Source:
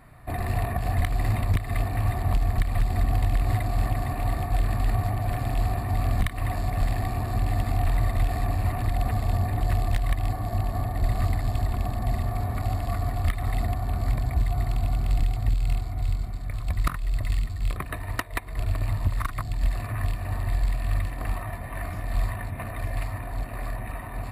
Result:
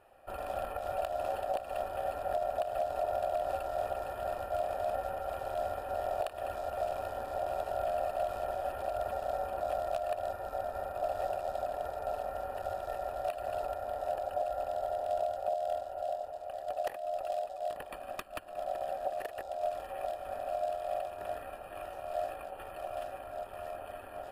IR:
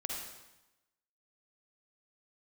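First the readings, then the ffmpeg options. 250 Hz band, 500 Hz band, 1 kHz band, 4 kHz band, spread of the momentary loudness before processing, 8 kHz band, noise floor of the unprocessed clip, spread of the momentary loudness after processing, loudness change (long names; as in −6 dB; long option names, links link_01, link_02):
−19.0 dB, +5.5 dB, −0.5 dB, −9.5 dB, 7 LU, below −10 dB, −35 dBFS, 8 LU, −8.5 dB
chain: -af "aeval=exprs='val(0)*sin(2*PI*660*n/s)':channel_layout=same,bandreject=frequency=2100:width=5.7,volume=-8.5dB"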